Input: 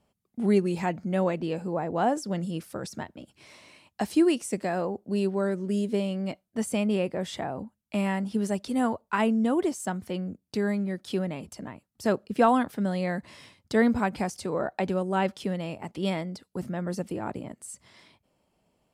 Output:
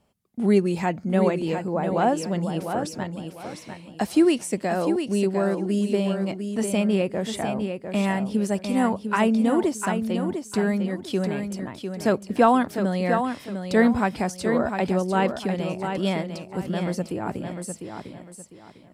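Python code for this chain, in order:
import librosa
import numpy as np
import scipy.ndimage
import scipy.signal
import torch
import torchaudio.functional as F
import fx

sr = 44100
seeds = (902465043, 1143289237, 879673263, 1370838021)

y = fx.echo_feedback(x, sr, ms=701, feedback_pct=28, wet_db=-7)
y = y * librosa.db_to_amplitude(3.5)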